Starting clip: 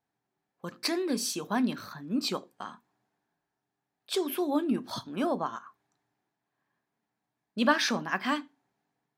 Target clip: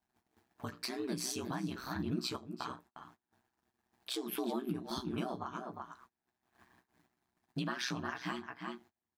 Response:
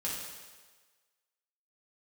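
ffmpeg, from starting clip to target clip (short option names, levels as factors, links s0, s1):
-filter_complex "[0:a]asplit=2[s0][s1];[s1]acompressor=mode=upward:threshold=0.0316:ratio=2.5,volume=0.891[s2];[s0][s2]amix=inputs=2:normalize=0,asplit=2[s3][s4];[s4]adelay=13,volume=0.596[s5];[s3][s5]amix=inputs=2:normalize=0,asplit=2[s6][s7];[s7]adelay=355.7,volume=0.282,highshelf=f=4000:g=-8[s8];[s6][s8]amix=inputs=2:normalize=0,acompressor=threshold=0.0708:ratio=3,alimiter=limit=0.106:level=0:latency=1:release=470,agate=range=0.0355:threshold=0.00316:ratio=16:detection=peak,aeval=exprs='val(0)*sin(2*PI*63*n/s)':c=same,equalizer=f=520:t=o:w=0.24:g=-11.5,volume=0.596"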